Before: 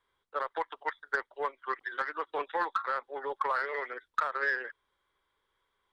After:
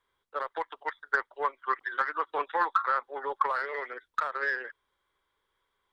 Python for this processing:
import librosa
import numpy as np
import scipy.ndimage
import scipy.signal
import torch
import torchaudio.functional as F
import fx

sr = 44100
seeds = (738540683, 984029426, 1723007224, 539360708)

y = fx.dynamic_eq(x, sr, hz=1200.0, q=1.3, threshold_db=-45.0, ratio=4.0, max_db=6, at=(0.95, 3.45), fade=0.02)